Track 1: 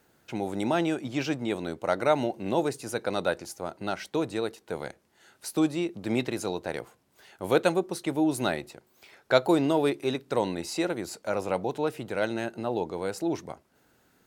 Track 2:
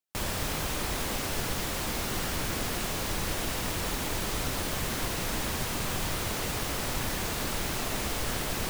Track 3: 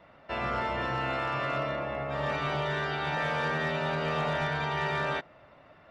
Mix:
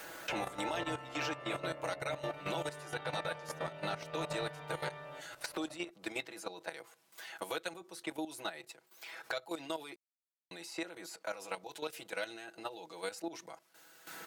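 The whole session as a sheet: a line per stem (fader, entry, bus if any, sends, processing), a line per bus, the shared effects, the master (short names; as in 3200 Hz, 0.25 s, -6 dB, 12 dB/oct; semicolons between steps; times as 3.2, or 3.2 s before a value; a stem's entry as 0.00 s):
-4.5 dB, 0.00 s, muted 9.96–10.51, no send, HPF 1400 Hz 6 dB/oct; comb 6.1 ms, depth 81%; three-band squash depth 100%
off
-1.5 dB, 0.00 s, no send, bell 550 Hz +6 dB 0.55 oct; comb 6.7 ms, depth 65%; limiter -29 dBFS, peak gain reduction 13 dB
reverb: off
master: level quantiser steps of 12 dB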